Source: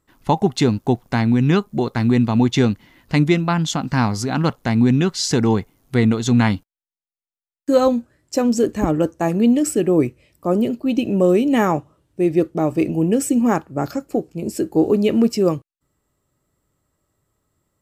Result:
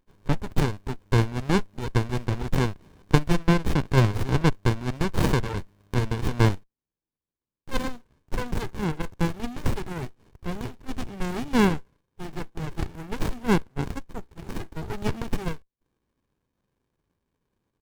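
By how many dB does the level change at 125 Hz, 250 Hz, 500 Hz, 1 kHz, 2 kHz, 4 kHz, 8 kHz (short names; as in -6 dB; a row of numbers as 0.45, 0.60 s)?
-4.0, -11.5, -11.5, -7.0, -4.0, -7.0, -12.0 dB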